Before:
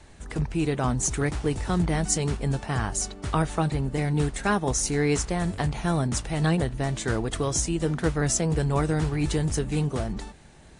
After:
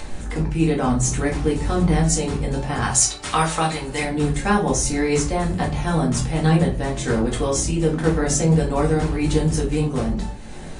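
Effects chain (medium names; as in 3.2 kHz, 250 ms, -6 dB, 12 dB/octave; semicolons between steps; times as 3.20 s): 2.82–4.03 s: tilt shelf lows -9.5 dB, about 650 Hz; upward compressor, threshold -30 dBFS; simulated room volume 170 m³, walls furnished, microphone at 2.1 m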